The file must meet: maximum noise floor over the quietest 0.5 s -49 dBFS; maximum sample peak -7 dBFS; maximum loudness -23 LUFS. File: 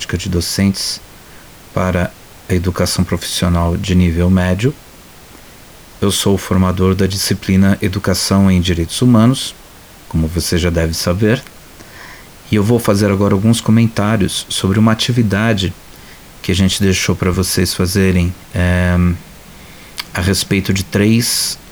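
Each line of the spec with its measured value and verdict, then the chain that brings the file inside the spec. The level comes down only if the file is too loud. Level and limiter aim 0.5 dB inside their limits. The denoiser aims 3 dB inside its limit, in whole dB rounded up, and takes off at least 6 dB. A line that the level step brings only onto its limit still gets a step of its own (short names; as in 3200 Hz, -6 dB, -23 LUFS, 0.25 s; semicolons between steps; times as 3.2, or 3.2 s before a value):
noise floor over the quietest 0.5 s -39 dBFS: fail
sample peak -1.5 dBFS: fail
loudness -14.5 LUFS: fail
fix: denoiser 6 dB, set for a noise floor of -39 dBFS; gain -9 dB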